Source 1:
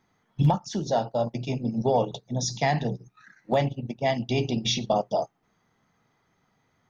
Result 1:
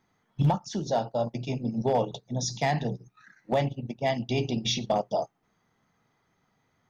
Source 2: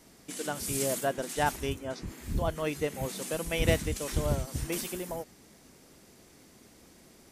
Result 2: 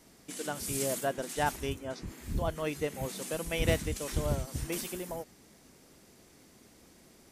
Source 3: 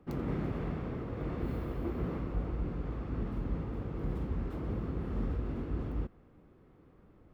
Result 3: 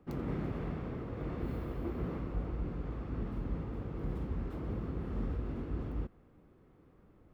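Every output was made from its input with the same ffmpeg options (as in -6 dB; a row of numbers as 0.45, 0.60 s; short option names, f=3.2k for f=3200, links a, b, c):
-af "volume=15dB,asoftclip=hard,volume=-15dB,volume=-2dB"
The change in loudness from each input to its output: -2.0, -2.0, -2.0 LU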